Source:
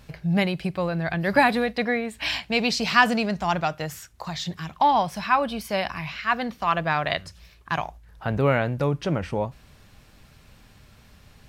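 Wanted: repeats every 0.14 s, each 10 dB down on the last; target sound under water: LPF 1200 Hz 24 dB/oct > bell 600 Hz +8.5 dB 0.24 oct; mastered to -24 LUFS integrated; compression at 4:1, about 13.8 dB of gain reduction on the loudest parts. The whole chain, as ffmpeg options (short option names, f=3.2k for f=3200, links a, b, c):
-af "acompressor=threshold=-30dB:ratio=4,lowpass=f=1.2k:w=0.5412,lowpass=f=1.2k:w=1.3066,equalizer=f=600:t=o:w=0.24:g=8.5,aecho=1:1:140|280|420|560:0.316|0.101|0.0324|0.0104,volume=9dB"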